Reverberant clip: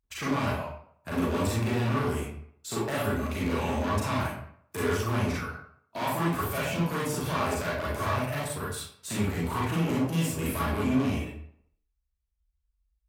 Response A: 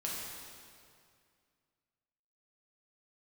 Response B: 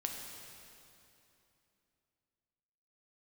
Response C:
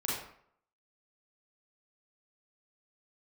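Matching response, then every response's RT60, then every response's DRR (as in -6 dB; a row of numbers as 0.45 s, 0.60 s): C; 2.2 s, 2.9 s, 0.65 s; -5.0 dB, 1.0 dB, -6.5 dB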